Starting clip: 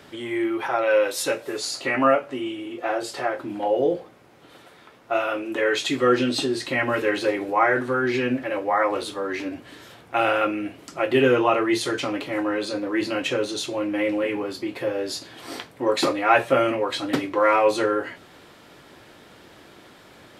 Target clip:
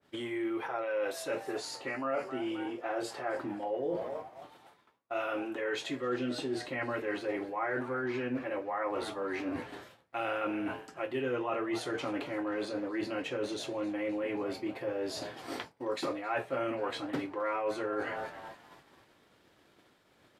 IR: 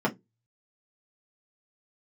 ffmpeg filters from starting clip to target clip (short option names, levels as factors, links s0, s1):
-filter_complex "[0:a]asplit=6[s0][s1][s2][s3][s4][s5];[s1]adelay=265,afreqshift=120,volume=0.112[s6];[s2]adelay=530,afreqshift=240,volume=0.0617[s7];[s3]adelay=795,afreqshift=360,volume=0.0339[s8];[s4]adelay=1060,afreqshift=480,volume=0.0186[s9];[s5]adelay=1325,afreqshift=600,volume=0.0102[s10];[s0][s6][s7][s8][s9][s10]amix=inputs=6:normalize=0,agate=range=0.0224:threshold=0.0178:ratio=3:detection=peak,areverse,acompressor=threshold=0.0126:ratio=4,areverse,adynamicequalizer=threshold=0.00158:dfrequency=2600:dqfactor=0.7:tfrequency=2600:tqfactor=0.7:attack=5:release=100:ratio=0.375:range=3.5:mode=cutabove:tftype=highshelf,volume=1.5"